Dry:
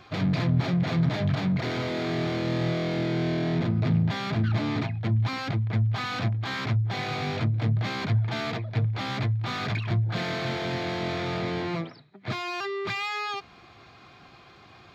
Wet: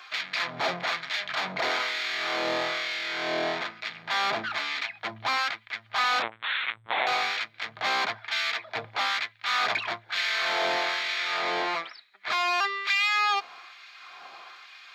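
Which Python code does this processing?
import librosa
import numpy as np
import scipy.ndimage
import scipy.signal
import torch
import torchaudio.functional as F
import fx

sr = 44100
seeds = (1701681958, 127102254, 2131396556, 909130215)

y = fx.lpc_vocoder(x, sr, seeds[0], excitation='pitch_kept', order=8, at=(6.22, 7.07))
y = fx.filter_lfo_highpass(y, sr, shape='sine', hz=1.1, low_hz=700.0, high_hz=2000.0, q=1.1)
y = F.gain(torch.from_numpy(y), 6.5).numpy()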